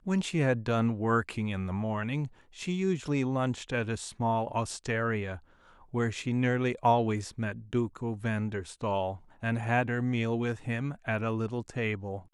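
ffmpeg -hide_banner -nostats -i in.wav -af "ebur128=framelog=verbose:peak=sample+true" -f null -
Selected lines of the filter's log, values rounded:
Integrated loudness:
  I:         -30.9 LUFS
  Threshold: -41.0 LUFS
Loudness range:
  LRA:         1.7 LU
  Threshold: -51.1 LUFS
  LRA low:   -32.0 LUFS
  LRA high:  -30.3 LUFS
Sample peak:
  Peak:      -11.7 dBFS
True peak:
  Peak:      -11.7 dBFS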